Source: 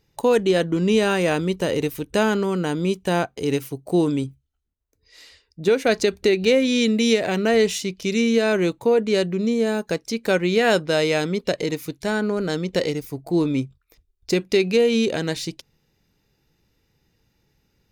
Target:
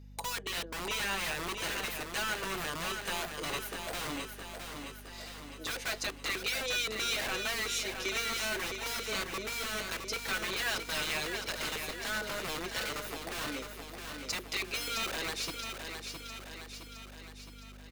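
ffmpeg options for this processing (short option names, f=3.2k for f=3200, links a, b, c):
-filter_complex "[0:a]highpass=f=390:w=0.5412,highpass=f=390:w=1.3066,aecho=1:1:6.1:0.86,acompressor=threshold=-37dB:ratio=1.5,acrossover=split=930[a][b];[a]aeval=exprs='(mod(33.5*val(0)+1,2)-1)/33.5':c=same[c];[c][b]amix=inputs=2:normalize=0,aeval=exprs='val(0)+0.00501*(sin(2*PI*50*n/s)+sin(2*PI*2*50*n/s)/2+sin(2*PI*3*50*n/s)/3+sin(2*PI*4*50*n/s)/4+sin(2*PI*5*50*n/s)/5)':c=same,aecho=1:1:664|1328|1992|2656|3320|3984|4648|5312:0.473|0.274|0.159|0.0923|0.0535|0.0311|0.018|0.0104,volume=-3.5dB"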